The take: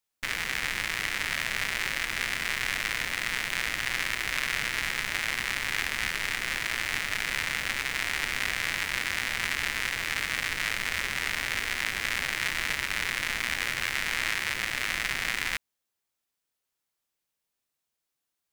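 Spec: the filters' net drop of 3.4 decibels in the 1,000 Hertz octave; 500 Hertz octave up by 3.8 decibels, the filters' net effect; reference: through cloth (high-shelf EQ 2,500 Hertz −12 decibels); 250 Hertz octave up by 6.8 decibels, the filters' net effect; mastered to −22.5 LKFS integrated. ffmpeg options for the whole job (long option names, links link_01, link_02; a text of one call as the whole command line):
ffmpeg -i in.wav -af "equalizer=frequency=250:width_type=o:gain=8,equalizer=frequency=500:width_type=o:gain=4,equalizer=frequency=1000:width_type=o:gain=-3,highshelf=frequency=2500:gain=-12,volume=11dB" out.wav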